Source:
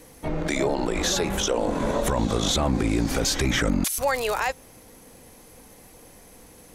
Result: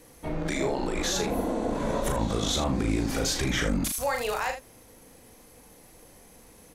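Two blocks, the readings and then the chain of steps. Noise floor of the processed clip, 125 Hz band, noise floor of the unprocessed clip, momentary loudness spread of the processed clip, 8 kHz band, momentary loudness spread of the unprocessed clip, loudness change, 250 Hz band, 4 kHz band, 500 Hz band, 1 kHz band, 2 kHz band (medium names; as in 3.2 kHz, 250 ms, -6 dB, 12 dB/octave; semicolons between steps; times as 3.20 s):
-54 dBFS, -3.5 dB, -50 dBFS, 5 LU, -4.0 dB, 5 LU, -3.5 dB, -3.0 dB, -4.0 dB, -4.0 dB, -3.5 dB, -4.0 dB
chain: spectral replace 1.29–1.66 s, 200–10000 Hz after; on a send: early reflections 37 ms -5.5 dB, 79 ms -11 dB; on the sum: trim -5 dB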